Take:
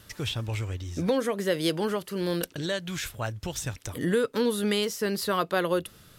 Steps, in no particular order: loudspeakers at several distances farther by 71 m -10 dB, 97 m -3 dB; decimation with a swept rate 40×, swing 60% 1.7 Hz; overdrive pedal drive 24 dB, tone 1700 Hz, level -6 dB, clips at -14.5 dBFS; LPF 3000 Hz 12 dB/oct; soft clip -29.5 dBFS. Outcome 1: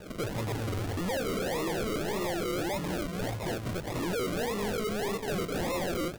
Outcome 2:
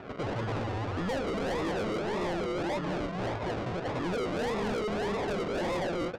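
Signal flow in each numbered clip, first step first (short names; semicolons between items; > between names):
overdrive pedal > loudspeakers at several distances > soft clip > LPF > decimation with a swept rate; loudspeakers at several distances > decimation with a swept rate > overdrive pedal > LPF > soft clip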